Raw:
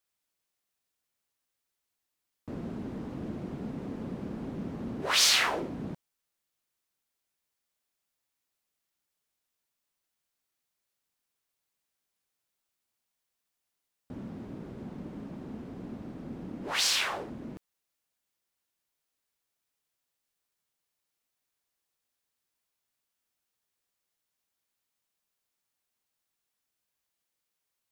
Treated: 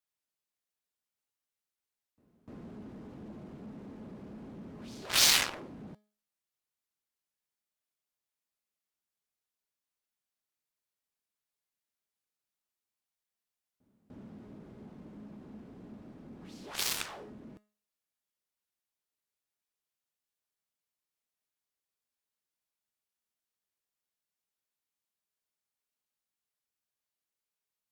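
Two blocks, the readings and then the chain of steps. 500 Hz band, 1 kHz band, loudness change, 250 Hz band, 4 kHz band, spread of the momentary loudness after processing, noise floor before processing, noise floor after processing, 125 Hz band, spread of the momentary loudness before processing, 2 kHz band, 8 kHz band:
-8.0 dB, -6.5 dB, +2.5 dB, -8.5 dB, -3.0 dB, 25 LU, -85 dBFS, under -85 dBFS, -8.5 dB, 19 LU, -4.0 dB, -0.5 dB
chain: feedback comb 210 Hz, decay 0.39 s, harmonics all, mix 60%; pre-echo 298 ms -23 dB; Chebyshev shaper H 7 -14 dB, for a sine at -17.5 dBFS; trim +7 dB

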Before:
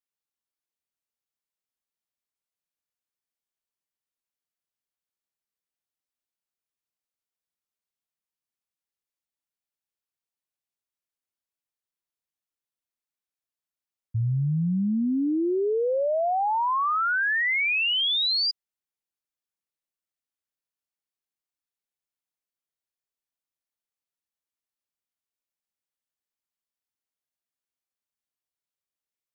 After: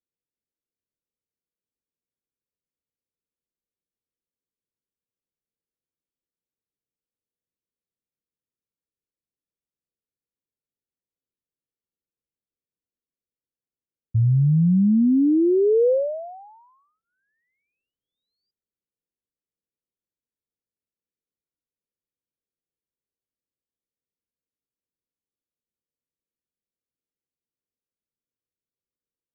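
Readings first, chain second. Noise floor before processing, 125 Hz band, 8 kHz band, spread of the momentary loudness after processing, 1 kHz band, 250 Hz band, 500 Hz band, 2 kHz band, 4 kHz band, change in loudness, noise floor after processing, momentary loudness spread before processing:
under -85 dBFS, +7.0 dB, no reading, 9 LU, -20.5 dB, +7.0 dB, +5.0 dB, under -40 dB, under -40 dB, +4.5 dB, under -85 dBFS, 5 LU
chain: Chebyshev shaper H 7 -33 dB, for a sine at -21 dBFS; elliptic low-pass 510 Hz, stop band 60 dB; trim +7.5 dB

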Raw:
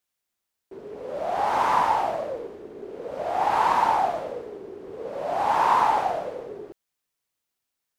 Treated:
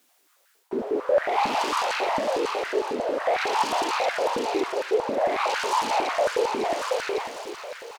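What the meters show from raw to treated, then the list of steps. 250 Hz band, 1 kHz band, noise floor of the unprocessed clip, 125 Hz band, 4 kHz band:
+6.5 dB, -3.0 dB, -83 dBFS, no reading, +9.5 dB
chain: in parallel at -4 dB: sine folder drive 14 dB, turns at -13 dBFS; on the sum: thinning echo 552 ms, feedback 35%, high-pass 930 Hz, level -7.5 dB; reverse; compression 6:1, threshold -31 dBFS, peak gain reduction 16.5 dB; reverse; delay 878 ms -13 dB; step-sequenced high-pass 11 Hz 250–1500 Hz; trim +2.5 dB

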